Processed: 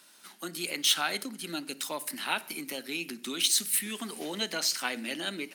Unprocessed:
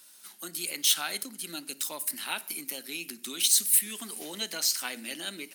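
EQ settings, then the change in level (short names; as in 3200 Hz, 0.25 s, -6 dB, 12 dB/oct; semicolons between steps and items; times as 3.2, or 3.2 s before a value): LPF 2600 Hz 6 dB/oct; +5.5 dB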